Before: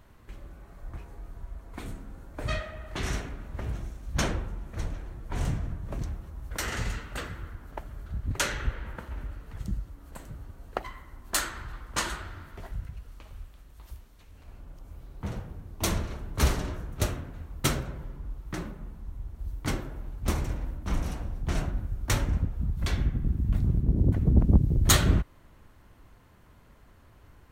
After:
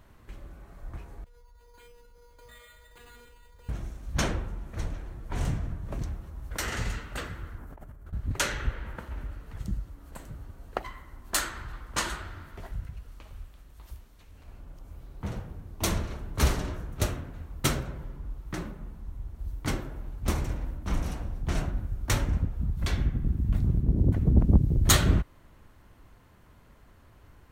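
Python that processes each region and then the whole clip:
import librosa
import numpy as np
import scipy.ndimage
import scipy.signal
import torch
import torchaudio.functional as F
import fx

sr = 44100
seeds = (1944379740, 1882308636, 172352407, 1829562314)

y = fx.chain(x, sr, fx.comb_fb(f0_hz=480.0, decay_s=0.4, harmonics='all', damping=0.0, mix_pct=100),
    fx.resample_bad(factor=8, down='none', up='hold'),
    fx.env_flatten(amount_pct=70), at=(1.24, 3.69))
y = fx.chain(y, sr, fx.peak_eq(hz=4000.0, db=-10.0, octaves=1.8),
    fx.over_compress(threshold_db=-45.0, ratio=-1.0), at=(7.58, 8.13))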